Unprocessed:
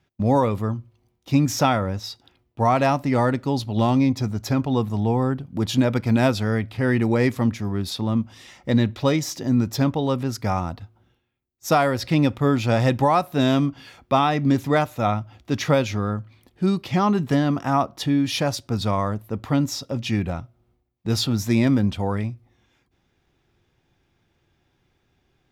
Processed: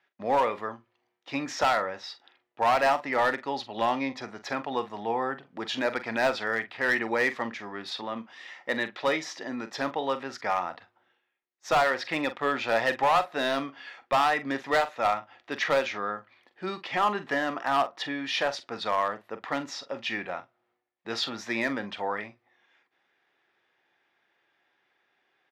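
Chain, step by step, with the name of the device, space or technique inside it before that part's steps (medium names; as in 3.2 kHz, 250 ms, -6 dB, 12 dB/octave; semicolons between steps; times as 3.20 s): 8.01–9.73 s: high-pass 120 Hz; megaphone (band-pass 600–3500 Hz; peaking EQ 1.8 kHz +7 dB 0.35 oct; hard clipper -18 dBFS, distortion -12 dB; doubling 44 ms -12.5 dB)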